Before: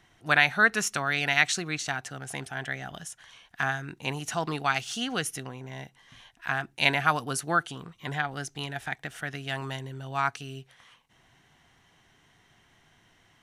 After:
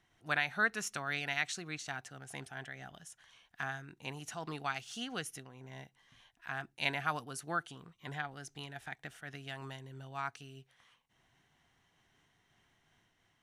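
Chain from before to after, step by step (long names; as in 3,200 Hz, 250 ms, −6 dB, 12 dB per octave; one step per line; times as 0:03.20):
amplitude modulation by smooth noise, depth 55%
level −8 dB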